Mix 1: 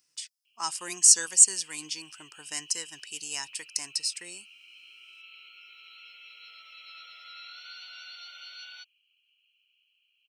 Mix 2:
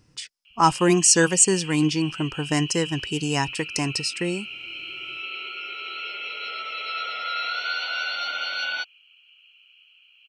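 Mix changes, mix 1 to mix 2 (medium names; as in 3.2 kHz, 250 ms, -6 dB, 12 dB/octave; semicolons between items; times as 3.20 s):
background +8.0 dB; master: remove differentiator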